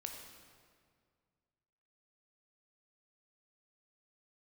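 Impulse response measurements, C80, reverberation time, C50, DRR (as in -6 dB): 5.0 dB, 2.0 s, 3.5 dB, 2.0 dB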